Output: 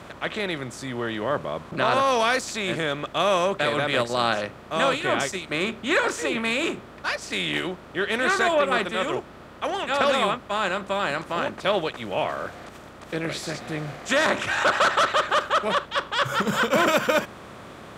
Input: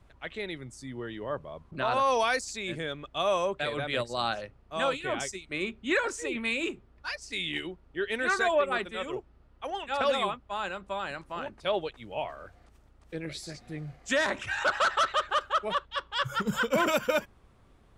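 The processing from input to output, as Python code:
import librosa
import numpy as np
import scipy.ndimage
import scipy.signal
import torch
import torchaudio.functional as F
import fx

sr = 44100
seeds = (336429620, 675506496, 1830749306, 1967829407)

y = fx.bin_compress(x, sr, power=0.6)
y = scipy.signal.sosfilt(scipy.signal.butter(2, 63.0, 'highpass', fs=sr, output='sos'), y)
y = F.gain(torch.from_numpy(y), 2.0).numpy()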